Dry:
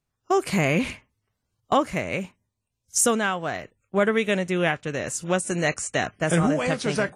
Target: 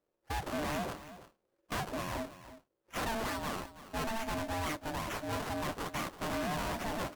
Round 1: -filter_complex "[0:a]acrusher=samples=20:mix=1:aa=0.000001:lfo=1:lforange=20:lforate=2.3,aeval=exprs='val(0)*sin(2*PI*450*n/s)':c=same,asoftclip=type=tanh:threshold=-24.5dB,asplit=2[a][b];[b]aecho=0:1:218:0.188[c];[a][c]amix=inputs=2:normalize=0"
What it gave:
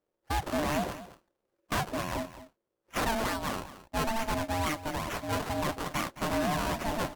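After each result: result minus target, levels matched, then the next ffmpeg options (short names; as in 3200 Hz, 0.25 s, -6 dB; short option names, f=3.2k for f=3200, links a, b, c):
echo 0.109 s early; soft clip: distortion -4 dB
-filter_complex "[0:a]acrusher=samples=20:mix=1:aa=0.000001:lfo=1:lforange=20:lforate=2.3,aeval=exprs='val(0)*sin(2*PI*450*n/s)':c=same,asoftclip=type=tanh:threshold=-24.5dB,asplit=2[a][b];[b]aecho=0:1:327:0.188[c];[a][c]amix=inputs=2:normalize=0"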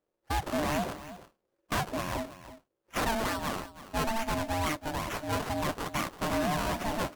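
soft clip: distortion -4 dB
-filter_complex "[0:a]acrusher=samples=20:mix=1:aa=0.000001:lfo=1:lforange=20:lforate=2.3,aeval=exprs='val(0)*sin(2*PI*450*n/s)':c=same,asoftclip=type=tanh:threshold=-32.5dB,asplit=2[a][b];[b]aecho=0:1:327:0.188[c];[a][c]amix=inputs=2:normalize=0"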